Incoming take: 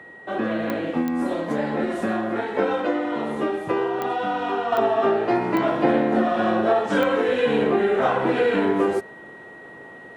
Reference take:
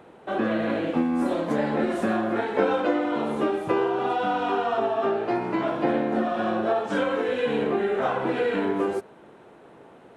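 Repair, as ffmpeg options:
-af "adeclick=t=4,bandreject=f=1.9k:w=30,asetnsamples=n=441:p=0,asendcmd='4.72 volume volume -4.5dB',volume=0dB"

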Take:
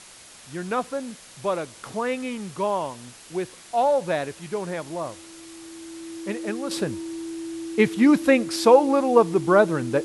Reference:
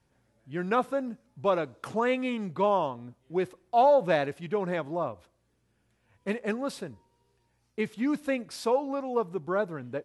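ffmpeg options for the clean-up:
-af "bandreject=f=330:w=30,afwtdn=0.0063,asetnsamples=n=441:p=0,asendcmd='6.71 volume volume -11.5dB',volume=0dB"

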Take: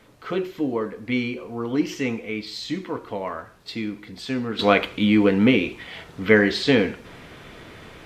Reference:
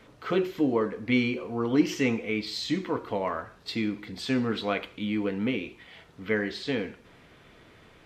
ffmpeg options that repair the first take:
-af "agate=range=-21dB:threshold=-36dB,asetnsamples=n=441:p=0,asendcmd='4.59 volume volume -11.5dB',volume=0dB"

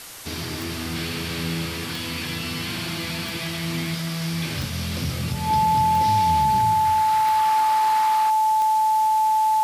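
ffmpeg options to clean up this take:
-af "adeclick=t=4,bandreject=f=870:w=30,afwtdn=0.013"

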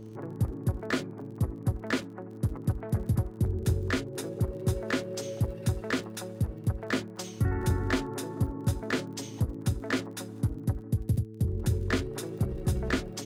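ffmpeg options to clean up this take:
-af "adeclick=t=4,bandreject=f=109.4:t=h:w=4,bandreject=f=218.8:t=h:w=4,bandreject=f=328.2:t=h:w=4,bandreject=f=437.6:t=h:w=4"

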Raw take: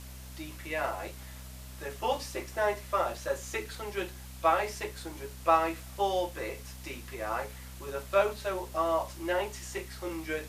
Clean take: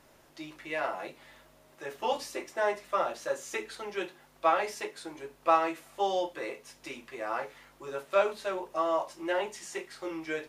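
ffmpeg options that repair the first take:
-af "adeclick=t=4,bandreject=f=63.8:t=h:w=4,bandreject=f=127.6:t=h:w=4,bandreject=f=191.4:t=h:w=4,bandreject=f=255.2:t=h:w=4,afwtdn=0.0028"

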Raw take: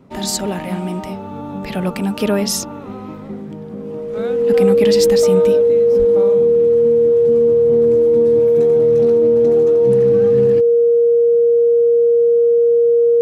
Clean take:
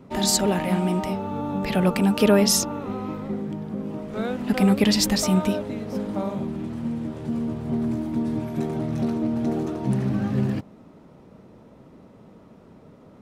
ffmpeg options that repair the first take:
-filter_complex "[0:a]bandreject=f=470:w=30,asplit=3[a][b][c];[a]afade=t=out:st=5.98:d=0.02[d];[b]highpass=f=140:w=0.5412,highpass=f=140:w=1.3066,afade=t=in:st=5.98:d=0.02,afade=t=out:st=6.1:d=0.02[e];[c]afade=t=in:st=6.1:d=0.02[f];[d][e][f]amix=inputs=3:normalize=0"

